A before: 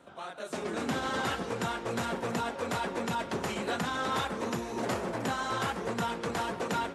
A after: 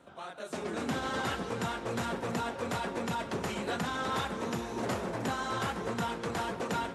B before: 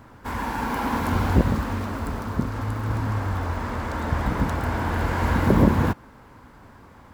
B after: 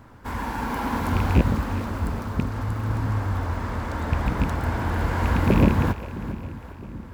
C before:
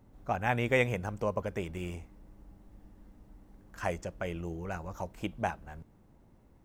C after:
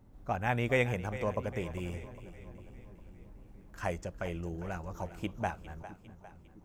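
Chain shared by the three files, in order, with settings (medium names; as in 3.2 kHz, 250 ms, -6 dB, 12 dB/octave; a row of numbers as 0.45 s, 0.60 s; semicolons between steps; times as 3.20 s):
rattle on loud lows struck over -16 dBFS, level -18 dBFS; bass shelf 140 Hz +4 dB; on a send: two-band feedback delay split 370 Hz, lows 661 ms, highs 403 ms, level -14 dB; on the sum: trim -2 dB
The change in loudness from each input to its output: -1.5 LU, -0.5 LU, -1.5 LU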